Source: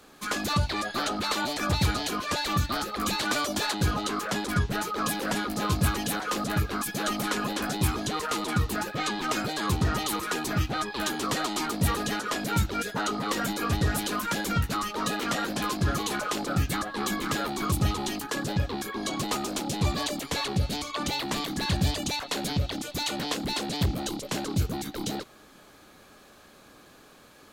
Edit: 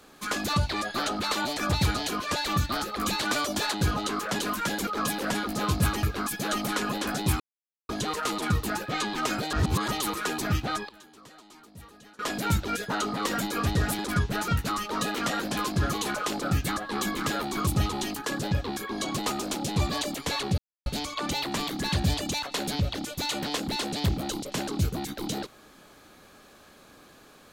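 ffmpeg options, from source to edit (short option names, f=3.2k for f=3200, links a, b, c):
-filter_complex "[0:a]asplit=12[a][b][c][d][e][f][g][h][i][j][k][l];[a]atrim=end=4.392[m];[b]atrim=start=14.048:end=14.532[n];[c]atrim=start=4.878:end=6.042[o];[d]atrim=start=6.578:end=7.95,asetpts=PTS-STARTPTS,afade=t=out:st=1.368:d=0.004:c=hsin,apad=pad_dur=0.49[p];[e]atrim=start=7.95:end=9.592,asetpts=PTS-STARTPTS,afade=t=in:d=0.004:c=hsin[q];[f]atrim=start=9.588:end=9.942,asetpts=PTS-STARTPTS,areverse[r];[g]atrim=start=9.938:end=10.95,asetpts=PTS-STARTPTS,afade=t=out:st=0.712:d=0.3:c=log:silence=0.0749894[s];[h]atrim=start=10.95:end=12.25,asetpts=PTS-STARTPTS,volume=-22.5dB[t];[i]atrim=start=12.25:end=14.052,asetpts=PTS-STARTPTS,afade=t=in:d=0.3:c=log:silence=0.0749894[u];[j]atrim=start=4.388:end=4.882[v];[k]atrim=start=14.528:end=20.63,asetpts=PTS-STARTPTS,afade=t=out:st=6.098:d=0.004:c=hsin,apad=pad_dur=0.28[w];[l]atrim=start=20.63,asetpts=PTS-STARTPTS,afade=t=in:d=0.004:c=hsin[x];[m][n]acrossfade=d=0.004:c1=hsin:c2=hsin[y];[y][o]acrossfade=d=0.004:c1=hsin:c2=hsin[z];[p][q]concat=n=2:v=0:a=1[aa];[z][aa]acrossfade=d=0.004:c1=hsin:c2=hsin[ab];[ab][r]acrossfade=d=0.004:c1=hsin:c2=hsin[ac];[s][t][u]concat=n=3:v=0:a=1[ad];[ac][ad]acrossfade=d=0.004:c1=hsin:c2=hsin[ae];[ae][v]acrossfade=d=0.004:c1=hsin:c2=hsin[af];[w][x]concat=n=2:v=0:a=1[ag];[af][ag]acrossfade=d=0.004:c1=hsin:c2=hsin"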